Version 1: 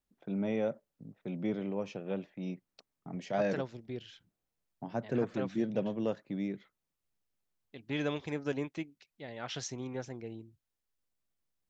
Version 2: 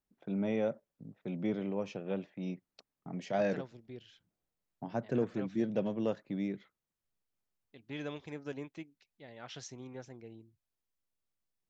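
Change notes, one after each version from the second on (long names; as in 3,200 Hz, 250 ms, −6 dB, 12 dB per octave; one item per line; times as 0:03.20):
second voice −7.0 dB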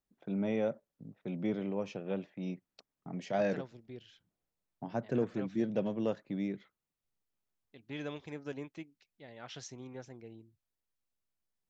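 nothing changed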